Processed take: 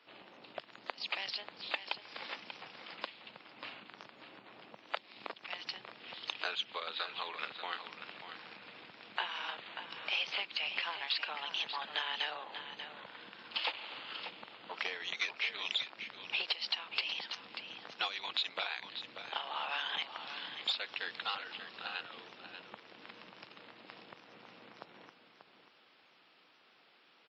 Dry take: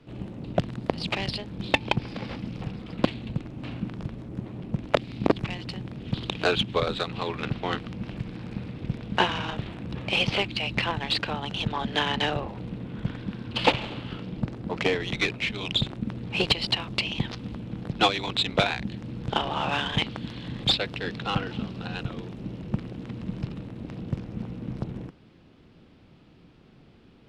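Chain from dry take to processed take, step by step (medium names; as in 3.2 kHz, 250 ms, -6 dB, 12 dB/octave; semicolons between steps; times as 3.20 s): compression 4:1, threshold -32 dBFS, peak gain reduction 15.5 dB; high-pass 960 Hz 12 dB/octave; feedback delay 588 ms, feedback 15%, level -9.5 dB; WMA 32 kbps 16 kHz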